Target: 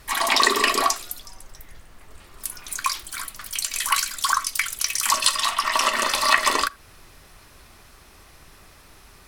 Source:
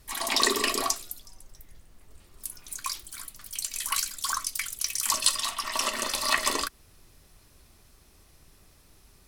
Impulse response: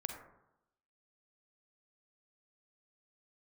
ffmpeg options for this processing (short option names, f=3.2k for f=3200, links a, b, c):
-filter_complex "[0:a]equalizer=f=1.4k:w=0.46:g=9,acompressor=threshold=-29dB:ratio=1.5,asplit=2[a][b];[1:a]atrim=start_sample=2205,atrim=end_sample=3969[c];[b][c]afir=irnorm=-1:irlink=0,volume=-15dB[d];[a][d]amix=inputs=2:normalize=0,volume=4.5dB"